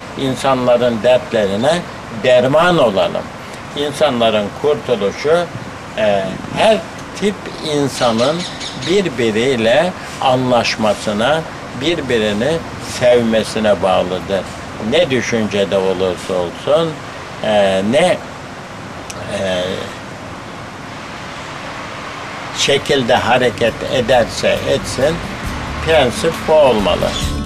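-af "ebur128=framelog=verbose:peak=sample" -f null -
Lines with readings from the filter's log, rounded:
Integrated loudness:
  I:         -15.3 LUFS
  Threshold: -25.9 LUFS
Loudness range:
  LRA:         4.9 LU
  Threshold: -36.1 LUFS
  LRA low:   -19.5 LUFS
  LRA high:  -14.6 LUFS
Sample peak:
  Peak:       -1.6 dBFS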